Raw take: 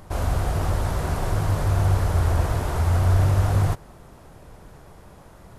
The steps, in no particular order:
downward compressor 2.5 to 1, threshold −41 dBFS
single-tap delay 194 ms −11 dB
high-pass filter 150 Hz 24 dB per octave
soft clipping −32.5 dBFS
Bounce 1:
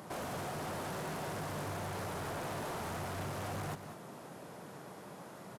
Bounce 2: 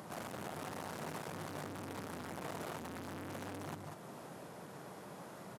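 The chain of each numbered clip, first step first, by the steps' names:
high-pass filter, then soft clipping, then downward compressor, then single-tap delay
single-tap delay, then soft clipping, then downward compressor, then high-pass filter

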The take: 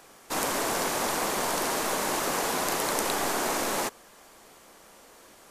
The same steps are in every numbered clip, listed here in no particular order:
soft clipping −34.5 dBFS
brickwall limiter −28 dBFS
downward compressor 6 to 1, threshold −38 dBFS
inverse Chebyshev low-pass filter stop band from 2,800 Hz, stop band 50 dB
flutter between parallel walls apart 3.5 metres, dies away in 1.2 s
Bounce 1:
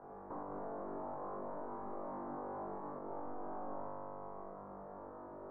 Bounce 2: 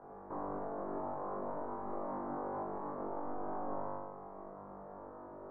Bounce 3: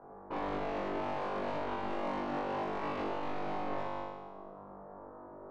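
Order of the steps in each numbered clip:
flutter between parallel walls, then downward compressor, then brickwall limiter, then soft clipping, then inverse Chebyshev low-pass filter
downward compressor, then soft clipping, then flutter between parallel walls, then brickwall limiter, then inverse Chebyshev low-pass filter
inverse Chebyshev low-pass filter, then soft clipping, then downward compressor, then flutter between parallel walls, then brickwall limiter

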